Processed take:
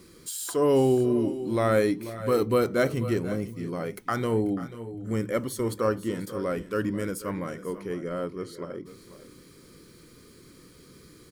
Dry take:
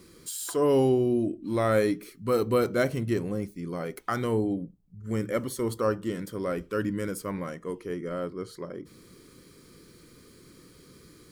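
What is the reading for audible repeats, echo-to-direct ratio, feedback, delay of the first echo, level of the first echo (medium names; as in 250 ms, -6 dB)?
2, -13.5 dB, no regular repeats, 488 ms, -15.5 dB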